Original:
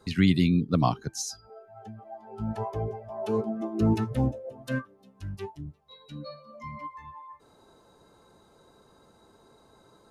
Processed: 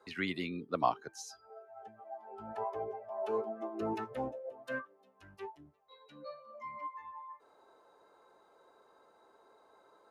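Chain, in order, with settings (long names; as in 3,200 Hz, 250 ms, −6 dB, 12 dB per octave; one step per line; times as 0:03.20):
three-way crossover with the lows and the highs turned down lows −24 dB, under 380 Hz, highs −12 dB, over 2,500 Hz
level −2 dB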